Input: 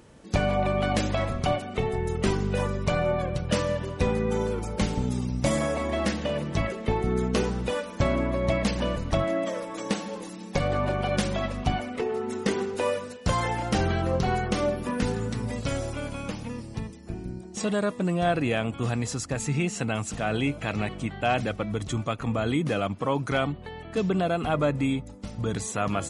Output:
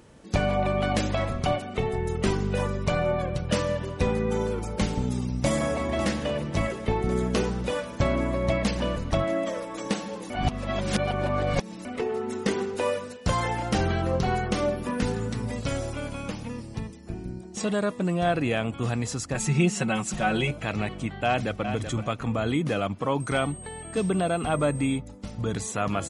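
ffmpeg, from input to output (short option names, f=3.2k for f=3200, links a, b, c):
-filter_complex "[0:a]asplit=2[a][b];[b]afade=t=in:st=5.04:d=0.01,afade=t=out:st=5.76:d=0.01,aecho=0:1:550|1100|1650|2200|2750|3300|3850|4400|4950|5500|6050|6600:0.281838|0.211379|0.158534|0.118901|0.0891754|0.0668815|0.0501612|0.0376209|0.0282157|0.0211617|0.0158713|0.0119035[c];[a][c]amix=inputs=2:normalize=0,asettb=1/sr,asplit=3[d][e][f];[d]atrim=end=19.344[g];[e]atrim=start=19.34:end=20.51,asetpts=PTS-STARTPTS,afade=t=in:d=0.004:c=qsin,afade=t=out:st=1.166:d=0.004:c=qsin,aecho=1:1:5.4:0.98,atrim=end_sample=51597[h];[f]atrim=start=20.506[i];[g][h]acrossfade=d=0.004:c1=hsin:c2=qsin[j];[j][i]acrossfade=d=0.004:c1=qsin:c2=hsin,asplit=2[k][l];[l]afade=t=in:st=21.26:d=0.01,afade=t=out:st=21.7:d=0.01,aecho=0:1:380|760|1140:0.375837|0.0751675|0.0150335[m];[k][m]amix=inputs=2:normalize=0,asettb=1/sr,asplit=3[n][o][p];[n]atrim=end=23.204[q];[o]atrim=start=23.2:end=24.98,asetpts=PTS-STARTPTS,afade=t=in:d=0.004:c=qsin,afade=t=out:st=1.776:d=0.004:c=qsin,aeval=exprs='val(0)+0.00794*sin(2*PI*8400*n/s)':c=same[r];[p]atrim=start=24.976[s];[q][r]acrossfade=d=0.004:c1=hsin:c2=qsin[t];[t][s]acrossfade=d=0.004:c1=qsin:c2=hsin,asplit=3[u][v][w];[u]atrim=end=10.302[x];[v]atrim=start=10.298:end=11.852,asetpts=PTS-STARTPTS,areverse[y];[w]atrim=start=11.848[z];[x][y]acrossfade=d=0.004:c1=hsin:c2=hsin[aa];[aa][z]acrossfade=d=0.004:c1=hsin:c2=hsin"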